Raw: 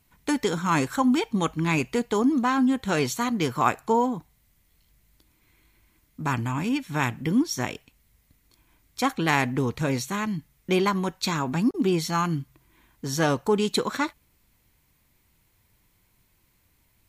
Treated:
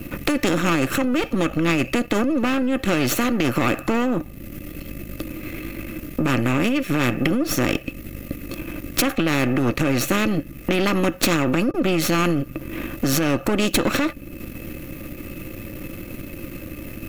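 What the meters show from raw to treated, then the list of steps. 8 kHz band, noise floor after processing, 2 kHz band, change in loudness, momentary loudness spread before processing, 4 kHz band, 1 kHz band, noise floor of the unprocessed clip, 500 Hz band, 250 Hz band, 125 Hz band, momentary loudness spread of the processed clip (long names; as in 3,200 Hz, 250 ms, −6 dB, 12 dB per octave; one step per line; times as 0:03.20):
+6.5 dB, −38 dBFS, +5.5 dB, +3.5 dB, 8 LU, +5.5 dB, −0.5 dB, −66 dBFS, +4.0 dB, +4.5 dB, +4.0 dB, 15 LU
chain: gain on one half-wave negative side −12 dB
graphic EQ with 10 bands 250 Hz +6 dB, 1,000 Hz −11 dB, 2,000 Hz +3 dB, 4,000 Hz −6 dB, 8,000 Hz −7 dB
downward compressor 2 to 1, threshold −47 dBFS, peak gain reduction 17 dB
low-shelf EQ 240 Hz +9 dB
hollow resonant body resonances 320/540/1,200/2,600 Hz, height 17 dB, ringing for 45 ms
boost into a limiter +22 dB
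every bin compressed towards the loudest bin 2 to 1
level −1 dB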